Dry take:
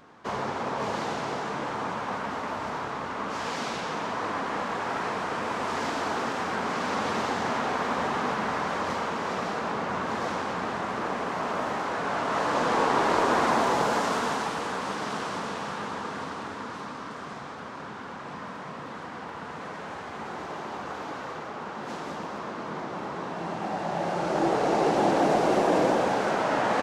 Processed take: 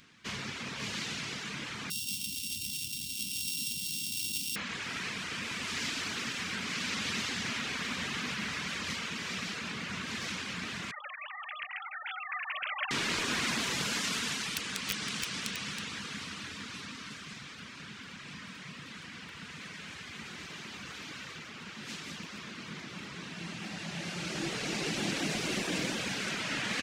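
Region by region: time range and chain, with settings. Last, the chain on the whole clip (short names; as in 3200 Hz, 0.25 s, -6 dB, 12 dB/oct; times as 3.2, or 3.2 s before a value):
1.9–4.56 sample sorter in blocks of 16 samples + Chebyshev band-stop 330–3300 Hz, order 3 + bell 760 Hz -14.5 dB 2.1 oct
10.91–12.91 sine-wave speech + Butterworth band-stop 680 Hz, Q 7.1
14.55–17.18 wrapped overs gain 21 dB + echo 0.322 s -7 dB
whole clip: EQ curve 190 Hz 0 dB, 520 Hz -14 dB, 820 Hz -18 dB, 2400 Hz +8 dB; reverb removal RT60 0.57 s; gain -2.5 dB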